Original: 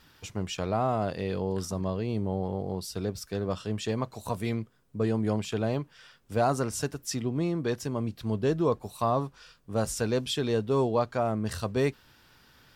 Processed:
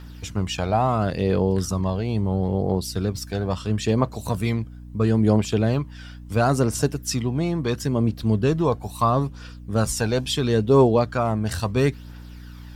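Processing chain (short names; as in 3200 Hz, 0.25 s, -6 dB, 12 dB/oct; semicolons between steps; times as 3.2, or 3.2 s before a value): phaser 0.74 Hz, delay 1.4 ms, feedback 43%; hum 60 Hz, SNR 17 dB; gain +6 dB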